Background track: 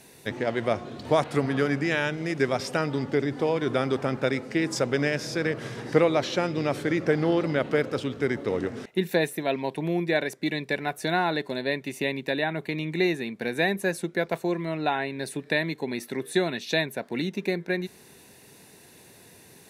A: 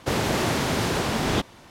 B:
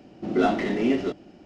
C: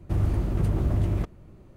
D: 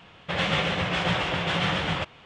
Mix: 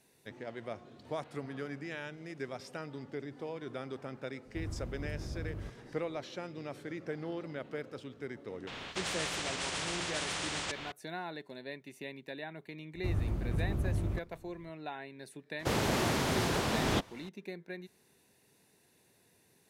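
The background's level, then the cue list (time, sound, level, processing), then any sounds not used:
background track −16 dB
0:04.45: mix in C −16.5 dB
0:08.67: mix in D −11.5 dB + every bin compressed towards the loudest bin 4 to 1
0:12.94: mix in C −8.5 dB
0:15.59: mix in A −6.5 dB
not used: B

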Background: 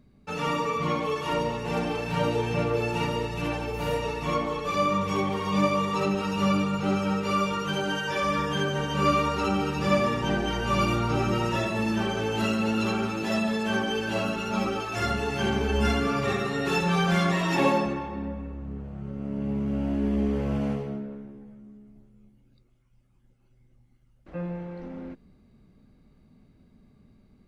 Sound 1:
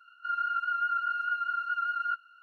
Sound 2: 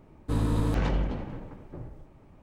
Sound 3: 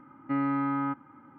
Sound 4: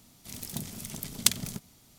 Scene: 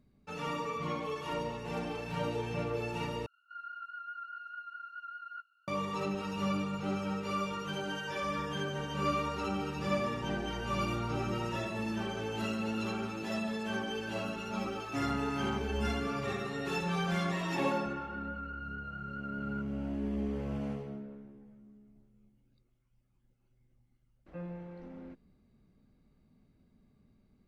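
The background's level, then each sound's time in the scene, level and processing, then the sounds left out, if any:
background −9 dB
0:03.26: overwrite with 1 −14 dB
0:14.64: mix in 3 −8 dB + bit-depth reduction 12 bits, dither triangular
0:17.47: mix in 1 −4.5 dB + downward compressor, threshold −37 dBFS
not used: 2, 4

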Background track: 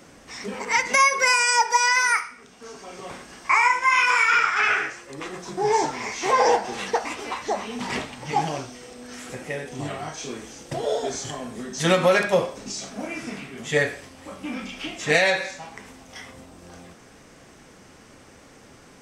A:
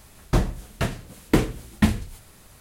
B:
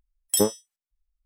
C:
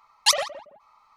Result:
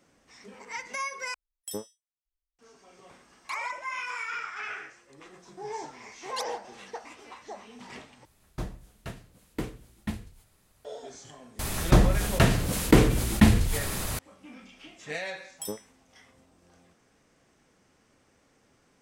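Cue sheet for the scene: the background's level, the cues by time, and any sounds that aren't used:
background track −16 dB
0:01.34: overwrite with B −15 dB + high-shelf EQ 12,000 Hz −4 dB
0:03.23: mix in C −8.5 dB + downward compressor 10 to 1, threshold −33 dBFS
0:06.10: mix in C −18 dB
0:08.25: overwrite with A −14.5 dB
0:11.59: mix in A + envelope flattener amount 50%
0:15.28: mix in B −15 dB

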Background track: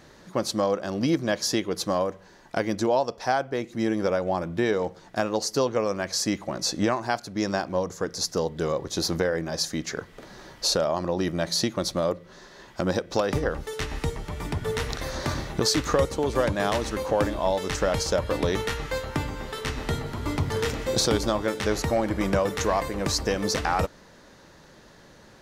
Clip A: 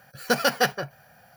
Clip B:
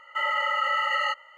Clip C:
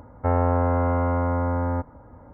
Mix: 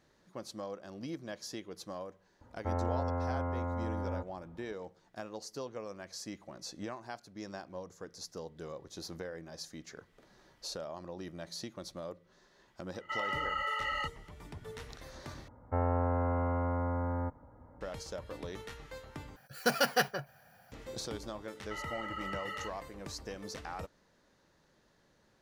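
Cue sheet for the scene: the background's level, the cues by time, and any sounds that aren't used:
background track −17.5 dB
0:02.41: mix in C −12.5 dB
0:12.94: mix in B −9.5 dB
0:15.48: overwrite with C −9.5 dB
0:19.36: overwrite with A −6.5 dB
0:21.55: mix in B −16 dB

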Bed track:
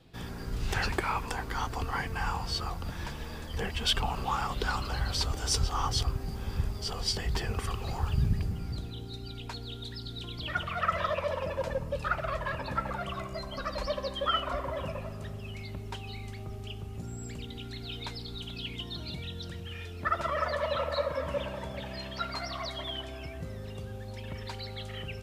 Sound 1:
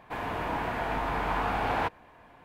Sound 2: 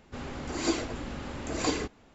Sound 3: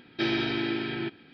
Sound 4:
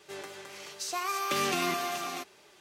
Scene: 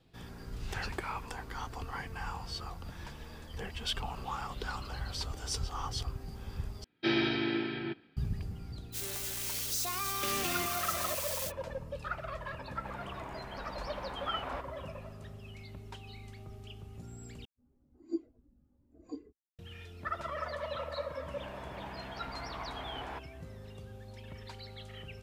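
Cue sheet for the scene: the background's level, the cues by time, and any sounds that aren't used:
bed track −7.5 dB
0:06.84: overwrite with 3 −2.5 dB + multiband upward and downward expander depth 70%
0:08.92: mix in 4 −6 dB, fades 0.05 s + spike at every zero crossing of −23 dBFS
0:12.73: mix in 1 −14.5 dB
0:17.45: overwrite with 2 −11 dB + every bin expanded away from the loudest bin 2.5 to 1
0:21.31: mix in 1 −14.5 dB

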